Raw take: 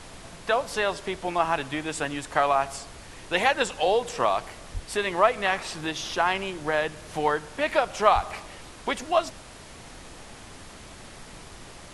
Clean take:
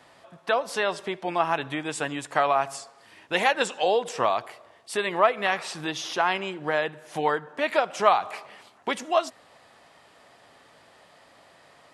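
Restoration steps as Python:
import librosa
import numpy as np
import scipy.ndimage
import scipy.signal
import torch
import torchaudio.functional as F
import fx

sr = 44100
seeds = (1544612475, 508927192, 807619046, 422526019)

y = fx.highpass(x, sr, hz=140.0, slope=24, at=(4.73, 4.85), fade=0.02)
y = fx.highpass(y, sr, hz=140.0, slope=24, at=(8.14, 8.26), fade=0.02)
y = fx.noise_reduce(y, sr, print_start_s=9.42, print_end_s=9.92, reduce_db=11.0)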